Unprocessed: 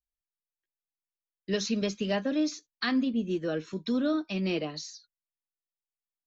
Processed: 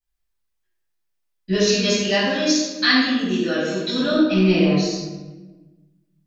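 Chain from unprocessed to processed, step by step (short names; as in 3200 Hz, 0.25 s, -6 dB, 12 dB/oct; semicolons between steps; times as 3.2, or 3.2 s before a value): 1.66–4.11 tilt +3 dB/oct; shoebox room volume 680 m³, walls mixed, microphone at 8.4 m; gain -3 dB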